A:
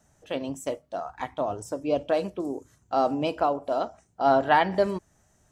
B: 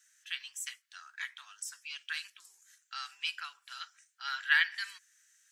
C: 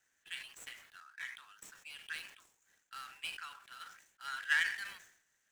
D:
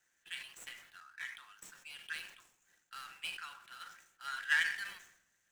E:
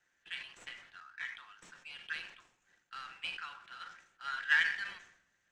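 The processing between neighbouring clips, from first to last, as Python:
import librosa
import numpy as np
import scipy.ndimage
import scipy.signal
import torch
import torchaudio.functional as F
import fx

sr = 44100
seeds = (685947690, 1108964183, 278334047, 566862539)

y1 = scipy.signal.sosfilt(scipy.signal.ellip(4, 1.0, 60, 1600.0, 'highpass', fs=sr, output='sos'), x)
y1 = F.gain(torch.from_numpy(y1), 3.5).numpy()
y2 = scipy.signal.medfilt(y1, 9)
y2 = fx.sustainer(y2, sr, db_per_s=89.0)
y2 = F.gain(torch.from_numpy(y2), -4.0).numpy()
y3 = fx.room_shoebox(y2, sr, seeds[0], volume_m3=3500.0, walls='furnished', distance_m=0.89)
y4 = fx.air_absorb(y3, sr, metres=120.0)
y4 = F.gain(torch.from_numpy(y4), 3.5).numpy()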